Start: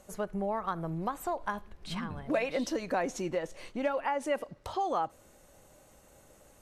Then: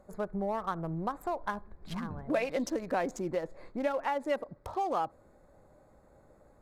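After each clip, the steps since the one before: Wiener smoothing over 15 samples; bell 12000 Hz +5.5 dB 0.74 oct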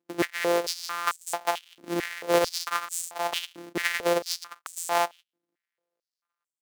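sample sorter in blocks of 256 samples; gate -49 dBFS, range -33 dB; stepped high-pass 4.5 Hz 300–7700 Hz; gain +6.5 dB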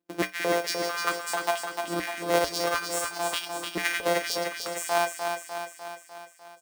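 resonator 62 Hz, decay 0.2 s, harmonics odd, mix 80%; on a send: feedback echo 0.3 s, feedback 59%, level -5.5 dB; on the sum: gain +6.5 dB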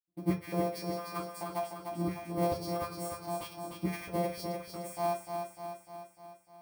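reverb RT60 0.35 s, pre-delay 76 ms; gain -6.5 dB

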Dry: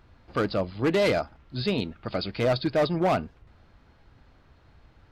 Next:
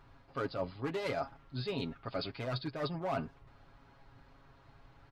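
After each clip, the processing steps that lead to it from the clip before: bell 1000 Hz +5 dB 1.1 oct; reverse; compressor 6:1, threshold -30 dBFS, peak gain reduction 12 dB; reverse; comb 7.3 ms, depth 70%; gain -5 dB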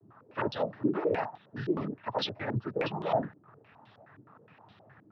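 noise vocoder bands 12; stepped low-pass 9.6 Hz 320–3500 Hz; gain +2.5 dB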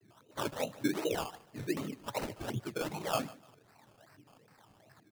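flange 0.78 Hz, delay 2.6 ms, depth 1.3 ms, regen +84%; decimation with a swept rate 18×, swing 60% 2.6 Hz; feedback echo 0.148 s, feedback 29%, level -20 dB

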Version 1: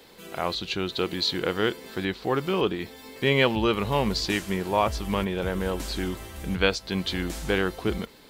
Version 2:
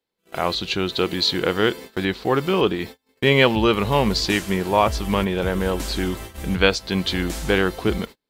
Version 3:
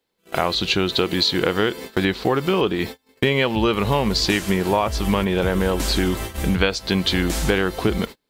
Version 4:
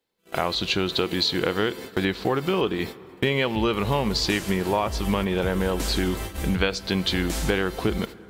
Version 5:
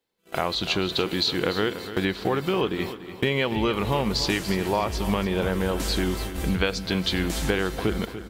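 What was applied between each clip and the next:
gate -39 dBFS, range -37 dB; gain +5.5 dB
compressor 6:1, threshold -23 dBFS, peak gain reduction 12 dB; gain +7 dB
plate-style reverb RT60 4.6 s, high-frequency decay 0.5×, DRR 18.5 dB; gain -4 dB
feedback echo 0.291 s, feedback 39%, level -12.5 dB; gain -1 dB

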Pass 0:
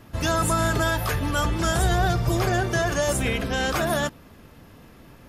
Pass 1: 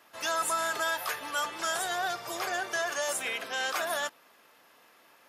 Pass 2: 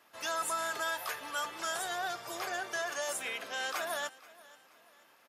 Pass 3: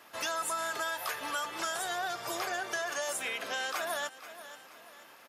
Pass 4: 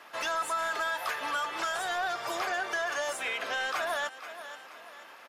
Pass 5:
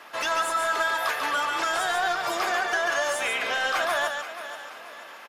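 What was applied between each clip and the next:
HPF 730 Hz 12 dB/oct; gain -4 dB
feedback echo 0.48 s, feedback 41%, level -21 dB; gain -4.5 dB
compressor 3:1, threshold -42 dBFS, peak gain reduction 9.5 dB; gain +8.5 dB
overdrive pedal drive 12 dB, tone 2500 Hz, clips at -20 dBFS
echo 0.142 s -4.5 dB; gain +5 dB

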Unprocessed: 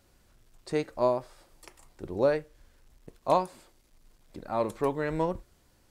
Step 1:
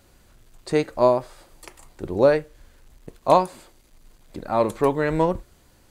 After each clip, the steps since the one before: notch 5400 Hz, Q 14; gain +8 dB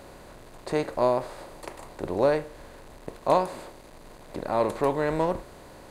per-bin compression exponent 0.6; gain -7.5 dB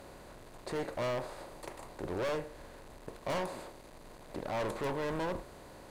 tube stage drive 18 dB, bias 0.75; overloaded stage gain 31.5 dB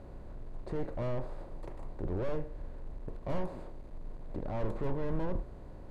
tilt -4 dB/oct; gain -6 dB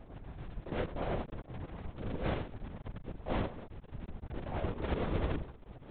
cycle switcher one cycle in 2, muted; LPC vocoder at 8 kHz whisper

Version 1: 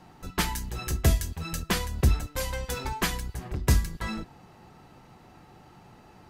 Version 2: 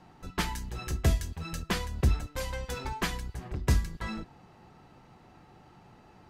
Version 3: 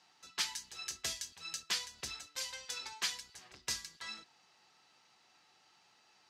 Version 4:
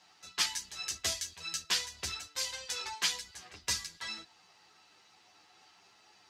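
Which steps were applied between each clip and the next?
high shelf 9200 Hz -10.5 dB; gain -3 dB
band-pass 5300 Hz, Q 1.3; gain +5 dB
chorus voices 6, 0.74 Hz, delay 11 ms, depth 1.7 ms; gain +8 dB

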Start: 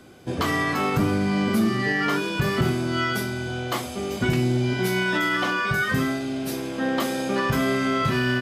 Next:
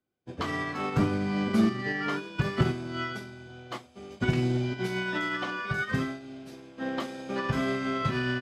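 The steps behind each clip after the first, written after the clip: Bessel low-pass 5700 Hz, order 2; upward expander 2.5:1, over -43 dBFS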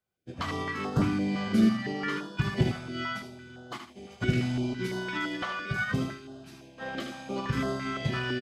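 on a send: feedback echo 77 ms, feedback 28%, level -7 dB; on the sum: stepped notch 5.9 Hz 290–2300 Hz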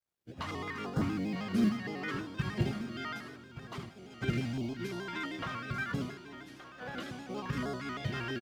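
companded quantiser 8-bit; echo 1.173 s -12.5 dB; shaped vibrato square 6.4 Hz, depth 100 cents; gain -6 dB

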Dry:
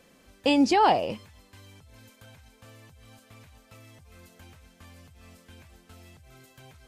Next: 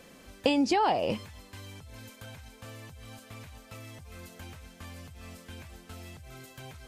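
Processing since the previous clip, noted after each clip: compressor 12:1, threshold -27 dBFS, peak gain reduction 12 dB; gain +5.5 dB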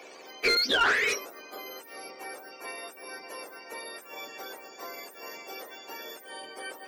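spectrum mirrored in octaves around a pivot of 1100 Hz; HPF 340 Hz 24 dB/oct; overdrive pedal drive 16 dB, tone 3600 Hz, clips at -17 dBFS; gain +2 dB

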